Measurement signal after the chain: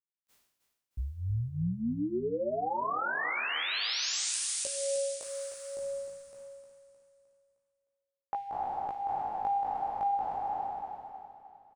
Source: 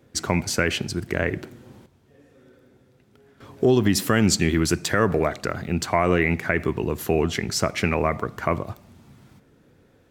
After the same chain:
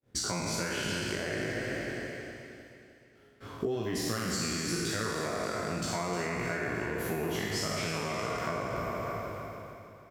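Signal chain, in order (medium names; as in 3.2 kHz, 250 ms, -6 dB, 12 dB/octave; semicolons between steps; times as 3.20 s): spectral sustain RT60 2.43 s; expander -44 dBFS; compression 6:1, threshold -28 dBFS; chorus 0.46 Hz, delay 16.5 ms, depth 2.6 ms; on a send: feedback delay 308 ms, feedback 48%, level -9.5 dB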